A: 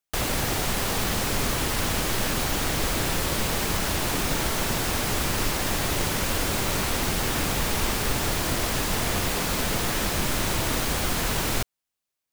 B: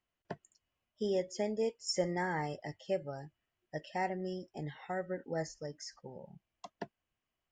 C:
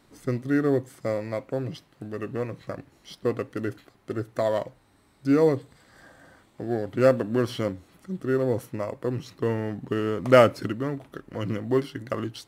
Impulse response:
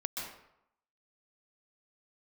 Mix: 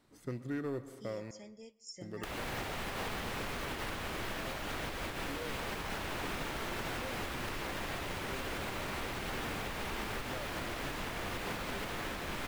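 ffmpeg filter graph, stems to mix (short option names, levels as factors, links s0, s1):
-filter_complex "[0:a]bass=f=250:g=-4,treble=f=4000:g=-7,adelay=2100,volume=0.944,asplit=2[s0][s1];[s1]volume=0.398[s2];[1:a]equalizer=f=620:t=o:w=3:g=-15,volume=0.422,asplit=3[s3][s4][s5];[s4]volume=0.0708[s6];[2:a]asoftclip=type=tanh:threshold=0.158,volume=0.282,asplit=3[s7][s8][s9];[s7]atrim=end=1.31,asetpts=PTS-STARTPTS,afade=t=out:st=1.306:d=0.004:c=hsin[s10];[s8]atrim=start=1.31:end=2.01,asetpts=PTS-STARTPTS,volume=0[s11];[s9]atrim=start=2.01,asetpts=PTS-STARTPTS,afade=t=in:d=0.004:c=hsin[s12];[s10][s11][s12]concat=n=3:v=0:a=1,asplit=2[s13][s14];[s14]volume=0.211[s15];[s5]apad=whole_len=636020[s16];[s0][s16]sidechaincompress=threshold=0.00178:ratio=8:attack=16:release=101[s17];[3:a]atrim=start_sample=2205[s18];[s2][s6][s15]amix=inputs=3:normalize=0[s19];[s19][s18]afir=irnorm=-1:irlink=0[s20];[s17][s3][s13][s20]amix=inputs=4:normalize=0,acrossover=split=1400|3600[s21][s22][s23];[s21]acompressor=threshold=0.02:ratio=4[s24];[s22]acompressor=threshold=0.0112:ratio=4[s25];[s23]acompressor=threshold=0.00447:ratio=4[s26];[s24][s25][s26]amix=inputs=3:normalize=0,alimiter=level_in=1.68:limit=0.0631:level=0:latency=1:release=321,volume=0.596"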